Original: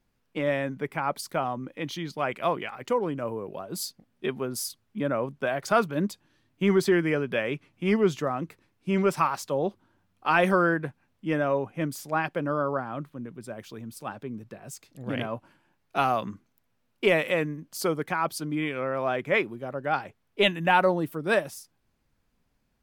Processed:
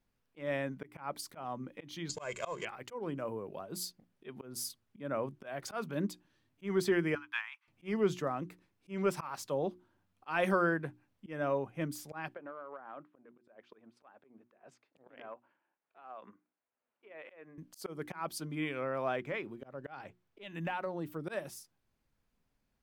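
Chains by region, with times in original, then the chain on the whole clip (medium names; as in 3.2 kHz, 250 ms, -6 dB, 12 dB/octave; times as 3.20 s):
2.09–2.65 s: companding laws mixed up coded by mu + resonant low-pass 7.1 kHz, resonance Q 14 + comb 1.9 ms, depth 62%
7.15–7.68 s: steep high-pass 870 Hz 72 dB/octave + treble shelf 4 kHz -10.5 dB + transient shaper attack +7 dB, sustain -4 dB
12.34–17.58 s: transient shaper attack +8 dB, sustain -5 dB + band-pass 420–2100 Hz + compression 16:1, threshold -34 dBFS
19.19–21.21 s: peaking EQ 11 kHz -8 dB 0.59 oct + compression, threshold -26 dBFS
whole clip: hum notches 60/120/180/240/300/360 Hz; slow attack 193 ms; trim -6.5 dB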